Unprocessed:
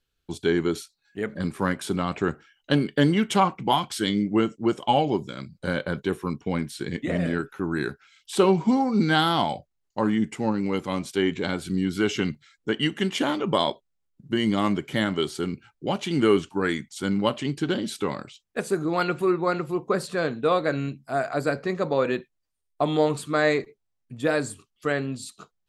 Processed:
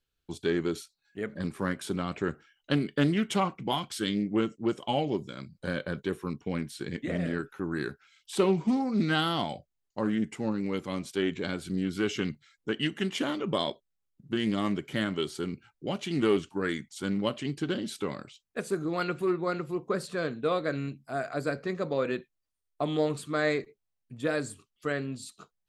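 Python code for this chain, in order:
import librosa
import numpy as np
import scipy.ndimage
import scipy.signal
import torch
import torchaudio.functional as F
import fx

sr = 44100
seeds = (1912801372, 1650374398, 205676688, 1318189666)

y = fx.dynamic_eq(x, sr, hz=880.0, q=2.5, threshold_db=-41.0, ratio=4.0, max_db=-6)
y = fx.doppler_dist(y, sr, depth_ms=0.15)
y = y * 10.0 ** (-5.0 / 20.0)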